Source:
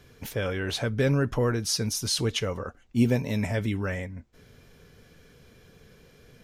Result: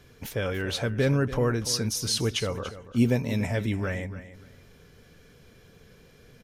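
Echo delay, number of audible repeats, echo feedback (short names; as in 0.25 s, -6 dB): 0.288 s, 2, 20%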